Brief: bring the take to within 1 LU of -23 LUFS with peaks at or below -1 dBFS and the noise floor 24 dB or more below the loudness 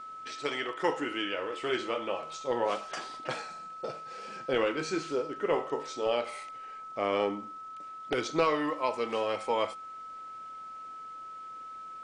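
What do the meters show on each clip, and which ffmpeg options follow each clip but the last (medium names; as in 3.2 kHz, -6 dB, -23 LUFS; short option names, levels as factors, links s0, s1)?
steady tone 1.3 kHz; tone level -41 dBFS; loudness -33.5 LUFS; peak level -15.0 dBFS; loudness target -23.0 LUFS
-> -af "bandreject=f=1300:w=30"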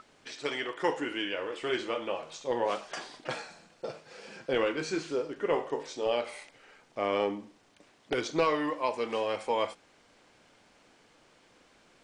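steady tone not found; loudness -32.5 LUFS; peak level -15.0 dBFS; loudness target -23.0 LUFS
-> -af "volume=2.99"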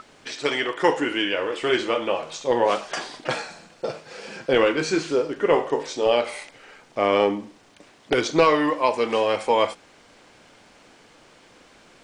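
loudness -23.0 LUFS; peak level -5.5 dBFS; noise floor -54 dBFS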